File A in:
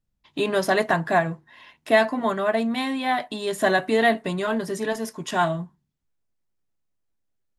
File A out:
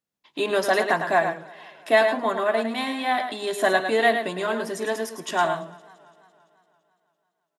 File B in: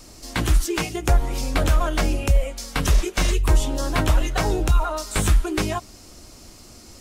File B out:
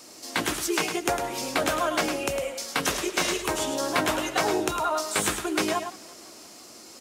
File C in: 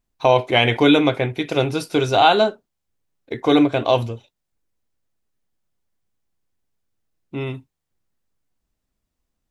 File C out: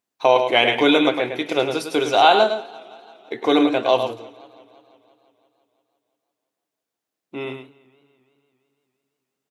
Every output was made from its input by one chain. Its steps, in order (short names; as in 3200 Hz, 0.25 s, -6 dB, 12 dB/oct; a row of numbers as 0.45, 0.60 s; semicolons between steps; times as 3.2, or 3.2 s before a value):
HPF 300 Hz 12 dB/oct; on a send: echo 0.106 s -7.5 dB; on the sum: warbling echo 0.169 s, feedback 69%, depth 149 cents, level -23.5 dB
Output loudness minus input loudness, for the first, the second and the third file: 0.0, -3.5, -0.5 LU